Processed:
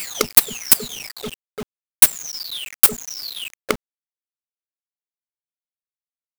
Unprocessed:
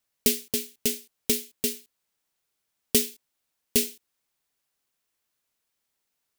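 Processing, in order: delay that grows with frequency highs early, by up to 924 ms; transient shaper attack +12 dB, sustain -2 dB; reverb removal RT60 0.99 s; companded quantiser 2-bit; trim -1 dB

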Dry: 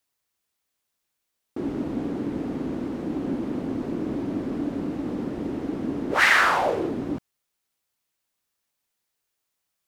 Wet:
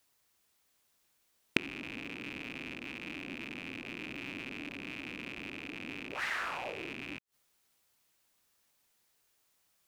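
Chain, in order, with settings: rattle on loud lows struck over -40 dBFS, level -12 dBFS; inverted gate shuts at -22 dBFS, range -24 dB; trim +6 dB

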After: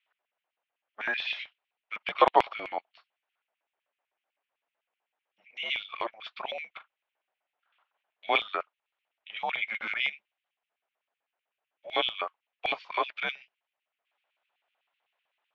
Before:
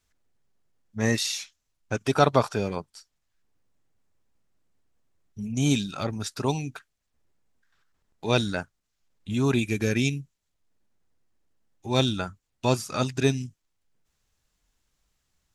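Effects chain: mistuned SSB -220 Hz 450–3400 Hz; LFO high-pass square 7.9 Hz 690–2500 Hz; 6.72–8.41 s: doubling 40 ms -14 dB

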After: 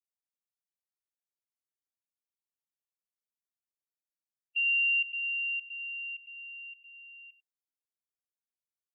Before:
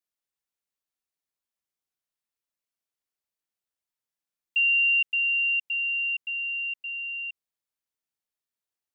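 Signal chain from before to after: expander on every frequency bin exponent 2; delay 96 ms -13.5 dB; trim -6 dB

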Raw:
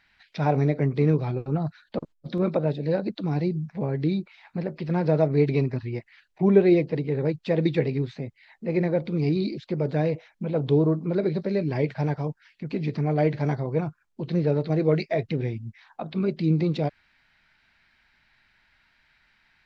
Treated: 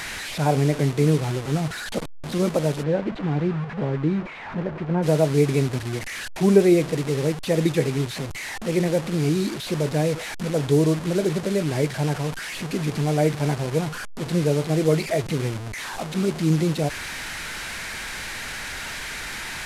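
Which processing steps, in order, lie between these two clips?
one-bit delta coder 64 kbps, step -28.5 dBFS; 2.82–5.02 s: low-pass 2.4 kHz -> 1.6 kHz 12 dB/octave; trim +2 dB

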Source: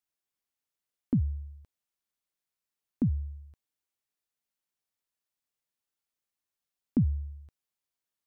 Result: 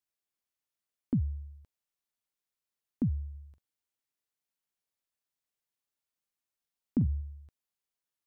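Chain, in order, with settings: 3.30–7.21 s: doubling 44 ms -12 dB; trim -2.5 dB

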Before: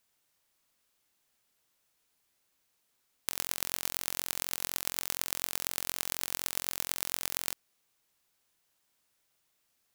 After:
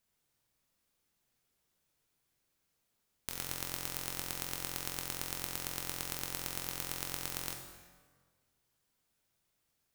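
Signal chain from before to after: bass shelf 290 Hz +10 dB; plate-style reverb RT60 1.6 s, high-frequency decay 0.7×, DRR 2 dB; trim -6.5 dB

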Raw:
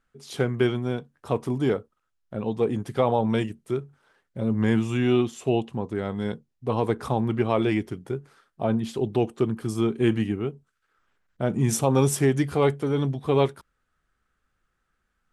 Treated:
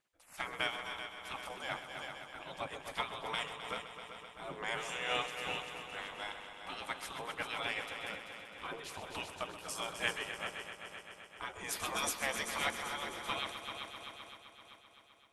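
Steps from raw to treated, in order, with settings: spectral gate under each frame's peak -20 dB weak; multi-head delay 129 ms, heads all three, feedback 64%, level -11.5 dB; random flutter of the level, depth 55%; trim +2.5 dB

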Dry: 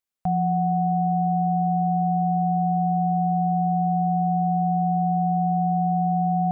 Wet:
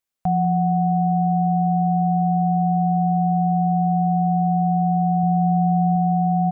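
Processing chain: 5.23–5.96 s: peaking EQ 94 Hz +6 dB 1.1 oct; on a send: delay 194 ms -16 dB; on the sum: trim +3 dB

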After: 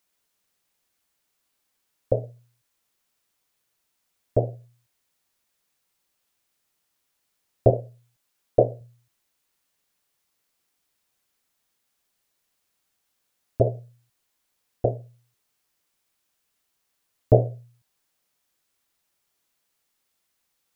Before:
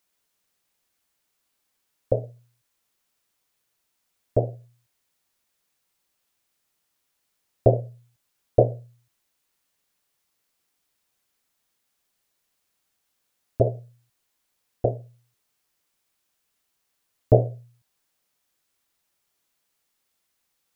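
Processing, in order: 7.70–8.81 s: peaking EQ 76 Hz -10 dB 1.3 oct

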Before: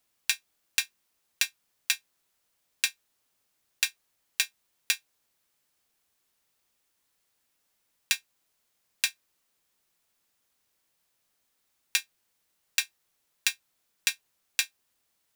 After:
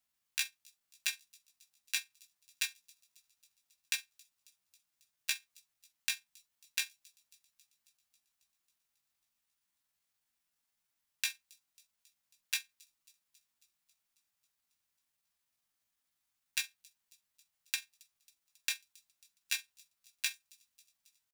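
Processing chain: peaking EQ 440 Hz -9 dB 1 oct; tempo 0.72×; feedback echo behind a high-pass 272 ms, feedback 69%, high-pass 5 kHz, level -23 dB; trim -8.5 dB

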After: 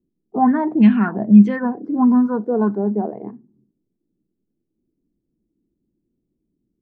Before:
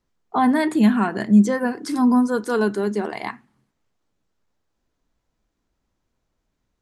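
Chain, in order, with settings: peaking EQ 190 Hz +12 dB 1.5 oct; touch-sensitive low-pass 340–2600 Hz up, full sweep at -2.5 dBFS; trim -7 dB

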